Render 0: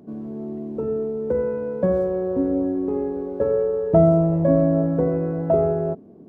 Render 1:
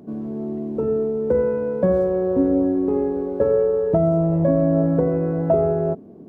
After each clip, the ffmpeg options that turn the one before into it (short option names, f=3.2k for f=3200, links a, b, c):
-af "alimiter=limit=-12dB:level=0:latency=1:release=473,volume=3.5dB"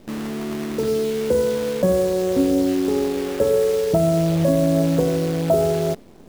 -af "acrusher=bits=6:dc=4:mix=0:aa=0.000001"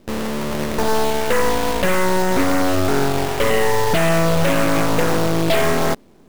-af "aeval=exprs='0.398*(cos(1*acos(clip(val(0)/0.398,-1,1)))-cos(1*PI/2))+0.02*(cos(5*acos(clip(val(0)/0.398,-1,1)))-cos(5*PI/2))+0.158*(cos(8*acos(clip(val(0)/0.398,-1,1)))-cos(8*PI/2))':c=same,volume=-2.5dB"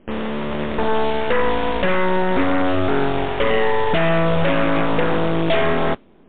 -af "equalizer=f=120:w=5.7:g=-11.5" -ar 8000 -c:a libmp3lame -b:a 40k